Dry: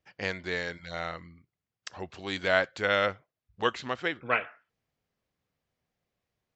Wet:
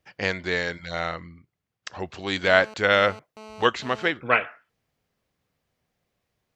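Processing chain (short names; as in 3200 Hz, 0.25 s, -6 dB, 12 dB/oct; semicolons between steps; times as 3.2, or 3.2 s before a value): 1.15–1.95 high shelf 4800 Hz -7 dB; 2.46–4.1 GSM buzz -49 dBFS; gain +6.5 dB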